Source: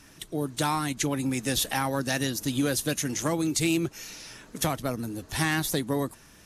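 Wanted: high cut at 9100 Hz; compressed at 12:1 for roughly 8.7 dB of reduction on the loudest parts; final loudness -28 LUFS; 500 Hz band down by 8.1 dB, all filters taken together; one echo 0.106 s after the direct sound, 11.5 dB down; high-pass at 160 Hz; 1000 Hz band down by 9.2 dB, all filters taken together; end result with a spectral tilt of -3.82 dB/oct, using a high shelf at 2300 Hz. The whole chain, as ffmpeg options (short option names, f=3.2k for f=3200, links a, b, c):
-af "highpass=160,lowpass=9.1k,equalizer=f=500:t=o:g=-8.5,equalizer=f=1k:t=o:g=-8,highshelf=f=2.3k:g=-5.5,acompressor=threshold=-34dB:ratio=12,aecho=1:1:106:0.266,volume=10.5dB"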